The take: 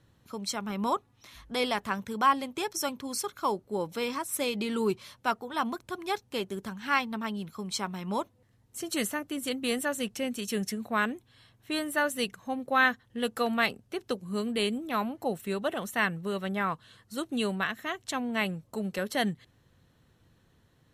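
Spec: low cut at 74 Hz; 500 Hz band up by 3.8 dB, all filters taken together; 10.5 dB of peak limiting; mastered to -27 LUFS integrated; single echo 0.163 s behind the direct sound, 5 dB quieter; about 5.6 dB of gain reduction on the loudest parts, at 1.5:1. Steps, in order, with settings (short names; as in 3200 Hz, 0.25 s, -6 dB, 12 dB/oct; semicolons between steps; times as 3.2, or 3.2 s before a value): HPF 74 Hz; bell 500 Hz +4.5 dB; compressor 1.5:1, threshold -33 dBFS; limiter -26 dBFS; echo 0.163 s -5 dB; gain +8.5 dB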